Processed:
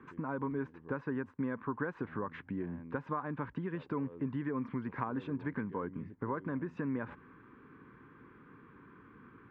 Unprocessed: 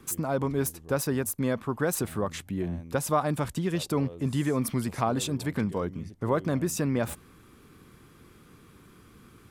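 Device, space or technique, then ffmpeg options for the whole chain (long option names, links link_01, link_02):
bass amplifier: -af "acompressor=threshold=-31dB:ratio=6,highpass=63,equalizer=frequency=79:width_type=q:width=4:gain=-9,equalizer=frequency=270:width_type=q:width=4:gain=6,equalizer=frequency=440:width_type=q:width=4:gain=3,equalizer=frequency=670:width_type=q:width=4:gain=-8,equalizer=frequency=1000:width_type=q:width=4:gain=9,equalizer=frequency=1600:width_type=q:width=4:gain=8,lowpass=frequency=2300:width=0.5412,lowpass=frequency=2300:width=1.3066,volume=-4.5dB"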